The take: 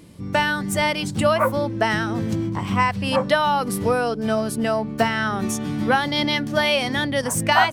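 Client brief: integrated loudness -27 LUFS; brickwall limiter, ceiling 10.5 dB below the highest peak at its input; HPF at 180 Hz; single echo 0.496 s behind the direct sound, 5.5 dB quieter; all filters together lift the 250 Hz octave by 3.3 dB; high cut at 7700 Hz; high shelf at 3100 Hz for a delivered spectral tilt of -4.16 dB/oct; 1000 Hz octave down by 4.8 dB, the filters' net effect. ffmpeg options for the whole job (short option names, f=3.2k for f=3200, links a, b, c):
-af "highpass=180,lowpass=7.7k,equalizer=f=250:t=o:g=6,equalizer=f=1k:t=o:g=-7,highshelf=f=3.1k:g=5.5,alimiter=limit=-15dB:level=0:latency=1,aecho=1:1:496:0.531,volume=-4dB"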